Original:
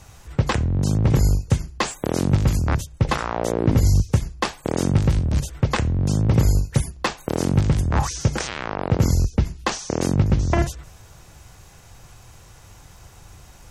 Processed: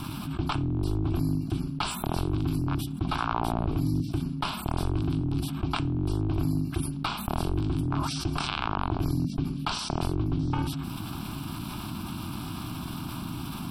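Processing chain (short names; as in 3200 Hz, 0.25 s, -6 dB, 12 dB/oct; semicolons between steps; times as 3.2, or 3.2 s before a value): ring modulator 210 Hz; fixed phaser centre 1900 Hz, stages 6; fast leveller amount 70%; gain -7.5 dB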